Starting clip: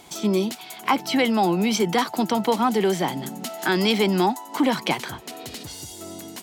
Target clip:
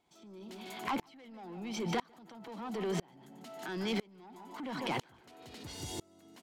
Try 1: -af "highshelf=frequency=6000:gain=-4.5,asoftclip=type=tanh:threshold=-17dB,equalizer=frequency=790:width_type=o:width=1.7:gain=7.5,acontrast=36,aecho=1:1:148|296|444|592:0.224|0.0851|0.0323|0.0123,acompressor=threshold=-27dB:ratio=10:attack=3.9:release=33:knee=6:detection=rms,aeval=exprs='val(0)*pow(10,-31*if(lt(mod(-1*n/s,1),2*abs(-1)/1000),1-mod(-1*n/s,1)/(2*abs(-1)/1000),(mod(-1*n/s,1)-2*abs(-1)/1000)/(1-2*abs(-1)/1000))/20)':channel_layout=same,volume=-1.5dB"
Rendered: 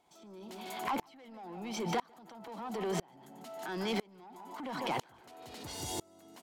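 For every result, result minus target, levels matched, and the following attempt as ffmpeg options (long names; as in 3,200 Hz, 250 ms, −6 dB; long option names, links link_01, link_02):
8,000 Hz band +3.0 dB; 1,000 Hz band +2.5 dB
-af "highshelf=frequency=6000:gain=-13,asoftclip=type=tanh:threshold=-17dB,equalizer=frequency=790:width_type=o:width=1.7:gain=7.5,acontrast=36,aecho=1:1:148|296|444|592:0.224|0.0851|0.0323|0.0123,acompressor=threshold=-27dB:ratio=10:attack=3.9:release=33:knee=6:detection=rms,aeval=exprs='val(0)*pow(10,-31*if(lt(mod(-1*n/s,1),2*abs(-1)/1000),1-mod(-1*n/s,1)/(2*abs(-1)/1000),(mod(-1*n/s,1)-2*abs(-1)/1000)/(1-2*abs(-1)/1000))/20)':channel_layout=same,volume=-1.5dB"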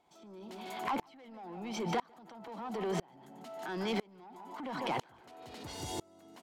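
1,000 Hz band +2.5 dB
-af "highshelf=frequency=6000:gain=-13,asoftclip=type=tanh:threshold=-17dB,acontrast=36,aecho=1:1:148|296|444|592:0.224|0.0851|0.0323|0.0123,acompressor=threshold=-27dB:ratio=10:attack=3.9:release=33:knee=6:detection=rms,aeval=exprs='val(0)*pow(10,-31*if(lt(mod(-1*n/s,1),2*abs(-1)/1000),1-mod(-1*n/s,1)/(2*abs(-1)/1000),(mod(-1*n/s,1)-2*abs(-1)/1000)/(1-2*abs(-1)/1000))/20)':channel_layout=same,volume=-1.5dB"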